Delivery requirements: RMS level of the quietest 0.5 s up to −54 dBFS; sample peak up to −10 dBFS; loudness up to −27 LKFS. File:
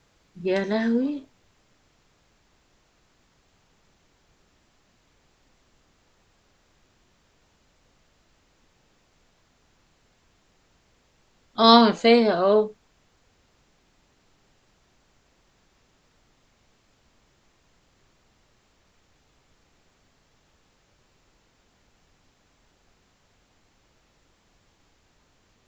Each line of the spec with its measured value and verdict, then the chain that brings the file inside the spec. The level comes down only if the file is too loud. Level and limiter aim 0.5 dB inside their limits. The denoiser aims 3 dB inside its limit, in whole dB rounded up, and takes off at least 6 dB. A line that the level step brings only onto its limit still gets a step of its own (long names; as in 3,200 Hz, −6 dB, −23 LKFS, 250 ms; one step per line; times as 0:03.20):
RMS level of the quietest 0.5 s −64 dBFS: in spec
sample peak −3.0 dBFS: out of spec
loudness −20.0 LKFS: out of spec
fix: level −7.5 dB